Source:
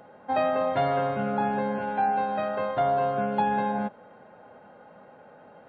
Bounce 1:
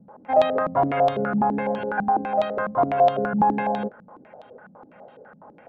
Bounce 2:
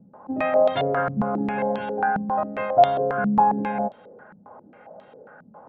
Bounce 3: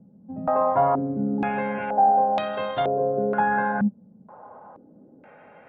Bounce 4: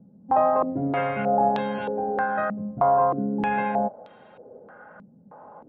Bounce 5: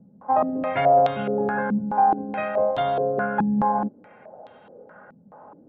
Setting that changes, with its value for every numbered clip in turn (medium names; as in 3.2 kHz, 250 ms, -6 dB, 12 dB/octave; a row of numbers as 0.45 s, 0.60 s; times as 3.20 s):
step-sequenced low-pass, rate: 12 Hz, 7.4 Hz, 2.1 Hz, 3.2 Hz, 4.7 Hz